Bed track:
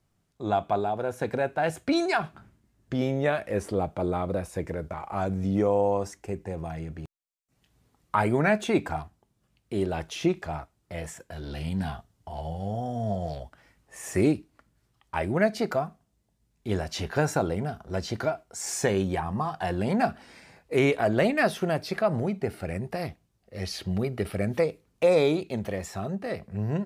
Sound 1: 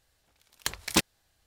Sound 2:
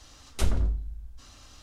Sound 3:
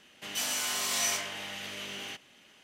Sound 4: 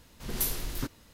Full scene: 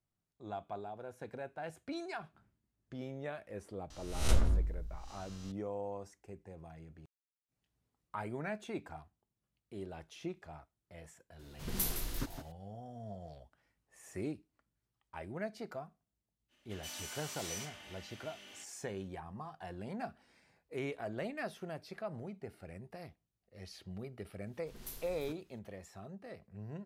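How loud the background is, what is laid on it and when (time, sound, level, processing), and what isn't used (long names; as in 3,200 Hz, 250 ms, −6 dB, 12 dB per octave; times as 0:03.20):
bed track −17 dB
0:03.90: mix in 2 −5 dB + peak hold with a rise ahead of every peak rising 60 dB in 0.61 s
0:11.39: mix in 4 −5 dB + single-tap delay 162 ms −9.5 dB
0:16.48: mix in 3 −15 dB, fades 0.05 s + comb filter 3.4 ms, depth 46%
0:24.46: mix in 4 −17 dB
not used: 1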